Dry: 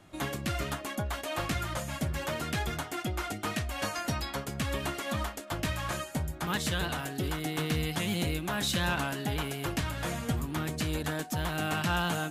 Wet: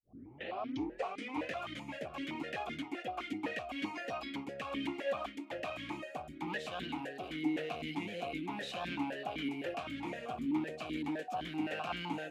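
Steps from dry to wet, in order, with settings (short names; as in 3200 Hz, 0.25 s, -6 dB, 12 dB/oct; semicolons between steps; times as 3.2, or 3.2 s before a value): tape start at the beginning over 1.59 s; one-sided clip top -30 dBFS; vowel sequencer 7.8 Hz; gain +8 dB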